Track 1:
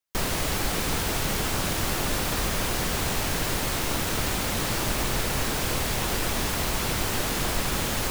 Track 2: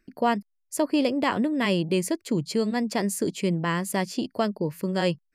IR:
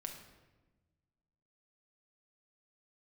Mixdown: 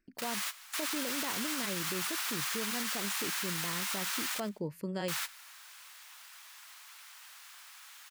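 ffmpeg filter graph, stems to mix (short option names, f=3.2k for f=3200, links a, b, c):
-filter_complex "[0:a]highpass=f=1.1k:w=0.5412,highpass=f=1.1k:w=1.3066,volume=-1dB,asplit=3[a][b][c];[a]atrim=end=4.4,asetpts=PTS-STARTPTS,afade=t=out:st=4.396:d=0.004:c=hsin[d];[b]atrim=start=4.4:end=5.08,asetpts=PTS-STARTPTS,volume=0[e];[c]atrim=start=5.08,asetpts=PTS-STARTPTS,afade=t=in:d=0.004:c=hsin[f];[d][e][f]concat=n=3:v=0:a=1,asplit=2[g][h];[h]volume=-21.5dB[i];[1:a]volume=-9.5dB,asplit=2[j][k];[k]apad=whole_len=357350[l];[g][l]sidechaingate=range=-57dB:threshold=-49dB:ratio=16:detection=peak[m];[i]aecho=0:1:93|186|279|372:1|0.24|0.0576|0.0138[n];[m][j][n]amix=inputs=3:normalize=0,alimiter=level_in=1.5dB:limit=-24dB:level=0:latency=1:release=35,volume=-1.5dB"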